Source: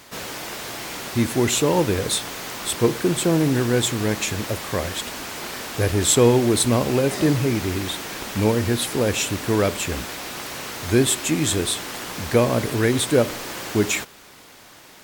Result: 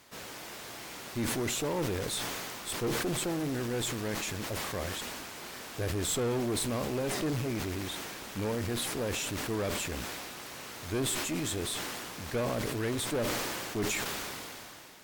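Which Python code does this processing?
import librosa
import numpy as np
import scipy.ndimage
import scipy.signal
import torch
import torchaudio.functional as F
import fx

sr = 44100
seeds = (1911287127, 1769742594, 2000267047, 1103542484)

y = fx.tube_stage(x, sr, drive_db=18.0, bias=0.6)
y = fx.sustainer(y, sr, db_per_s=21.0)
y = y * 10.0 ** (-9.0 / 20.0)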